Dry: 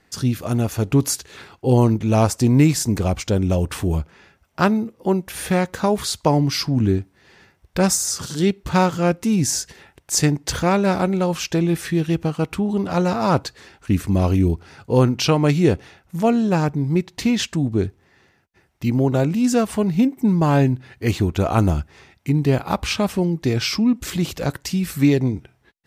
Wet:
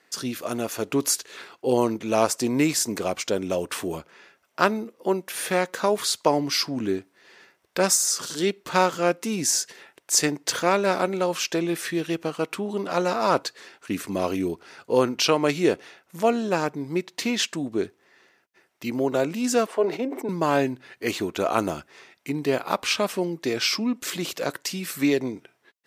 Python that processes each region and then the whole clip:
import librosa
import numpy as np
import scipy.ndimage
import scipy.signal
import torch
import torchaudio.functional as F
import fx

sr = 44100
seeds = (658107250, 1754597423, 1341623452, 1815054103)

y = fx.chain(x, sr, fx.highpass(hz=390.0, slope=24),
    fx.tilt_eq(slope=-4.5),
    fx.sustainer(db_per_s=84.0), at=(19.66, 20.29))
y = scipy.signal.sosfilt(scipy.signal.butter(2, 370.0, 'highpass', fs=sr, output='sos'), y)
y = fx.peak_eq(y, sr, hz=810.0, db=-5.5, octaves=0.22)